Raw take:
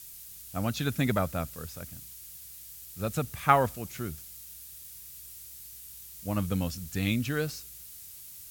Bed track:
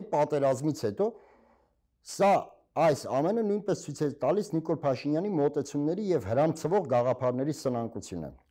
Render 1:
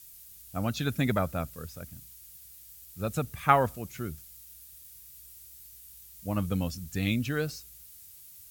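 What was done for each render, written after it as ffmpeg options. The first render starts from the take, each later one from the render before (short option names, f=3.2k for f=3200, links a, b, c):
-af "afftdn=nr=6:nf=-47"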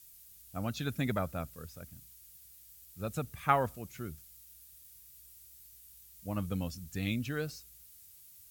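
-af "volume=-5.5dB"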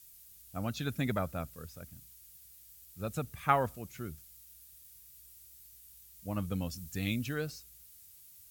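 -filter_complex "[0:a]asettb=1/sr,asplit=3[a][b][c];[a]atrim=end=6.714[d];[b]atrim=start=6.71:end=7.34,asetpts=PTS-STARTPTS,afade=t=in:d=0.004:c=qsin,afade=t=out:st=0.626:d=0.004:c=qsin,highshelf=f=5.2k:g=4.5[e];[c]atrim=start=7.336[f];[d][e]acrossfade=d=0.004:c1=hsin:c2=qsin[g];[g][f]acrossfade=d=0.004:c1=qsin:c2=hsin"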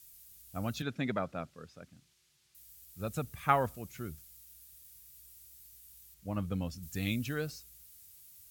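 -filter_complex "[0:a]asettb=1/sr,asplit=3[a][b][c];[a]atrim=end=0.824[d];[b]atrim=start=0.82:end=2.55,asetpts=PTS-STARTPTS,afade=t=in:d=0.004:c=qsin,afade=t=out:st=1.726:d=0.004:c=qsin,highpass=160,lowpass=4.5k[e];[c]atrim=start=2.546[f];[d][e]acrossfade=d=0.004:c1=hsin:c2=qsin[g];[g][f]acrossfade=d=0.004:c1=qsin:c2=hsin,asettb=1/sr,asplit=3[h][i][j];[h]atrim=end=6.144[k];[i]atrim=start=6.14:end=6.83,asetpts=PTS-STARTPTS,afade=t=in:d=0.004:c=qsin,afade=t=out:st=0.686:d=0.004:c=qsin,lowpass=f=3.9k:p=1[l];[j]atrim=start=6.826[m];[k][l]acrossfade=d=0.004:c1=hsin:c2=qsin[n];[n][m]acrossfade=d=0.004:c1=qsin:c2=hsin"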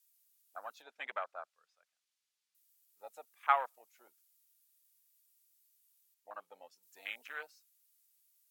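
-af "afwtdn=0.0112,highpass=f=730:w=0.5412,highpass=f=730:w=1.3066"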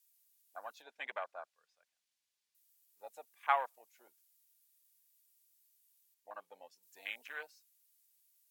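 -af "bandreject=f=1.3k:w=7.1"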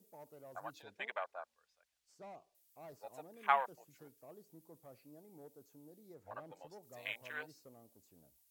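-filter_complex "[1:a]volume=-29.5dB[a];[0:a][a]amix=inputs=2:normalize=0"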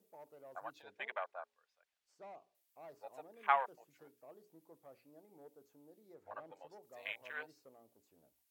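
-af "bass=f=250:g=-10,treble=f=4k:g=-8,bandreject=f=60:t=h:w=6,bandreject=f=120:t=h:w=6,bandreject=f=180:t=h:w=6,bandreject=f=240:t=h:w=6,bandreject=f=300:t=h:w=6,bandreject=f=360:t=h:w=6,bandreject=f=420:t=h:w=6"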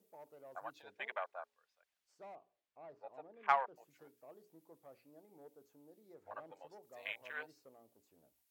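-filter_complex "[0:a]asettb=1/sr,asplit=3[a][b][c];[a]atrim=end=2.354[d];[b]atrim=start=2.35:end=3.76,asetpts=PTS-STARTPTS,afade=t=in:d=0.004:c=qsin,afade=t=out:st=1.406:d=0.004:c=qsin,adynamicsmooth=sensitivity=1.5:basefreq=3k[e];[c]atrim=start=3.756[f];[d][e]acrossfade=d=0.004:c1=hsin:c2=qsin[g];[g][f]acrossfade=d=0.004:c1=qsin:c2=hsin"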